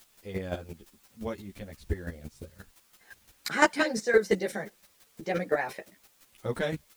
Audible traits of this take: a quantiser's noise floor 10-bit, dither triangular; chopped level 5.8 Hz, depth 65%, duty 15%; a shimmering, thickened sound

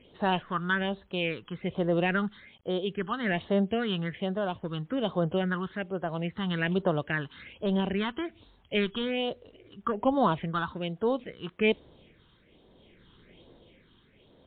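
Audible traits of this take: phasing stages 6, 1.2 Hz, lowest notch 580–2400 Hz; tremolo triangle 0.62 Hz, depth 50%; a quantiser's noise floor 12-bit, dither none; MP3

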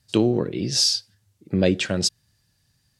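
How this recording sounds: noise floor -68 dBFS; spectral tilt -4.0 dB/octave

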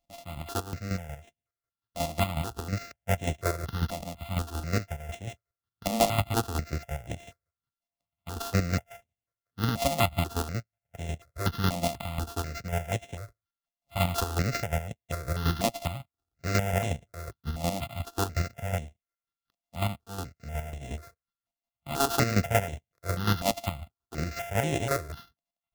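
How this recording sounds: a buzz of ramps at a fixed pitch in blocks of 64 samples; chopped level 5.5 Hz, depth 60%, duty 30%; aliases and images of a low sample rate 8.7 kHz, jitter 20%; notches that jump at a steady rate 4.1 Hz 410–4600 Hz

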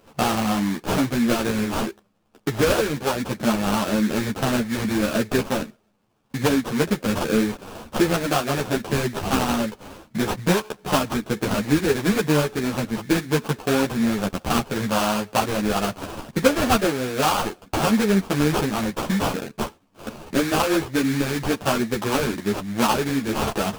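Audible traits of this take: aliases and images of a low sample rate 2 kHz, jitter 20%; a shimmering, thickened sound

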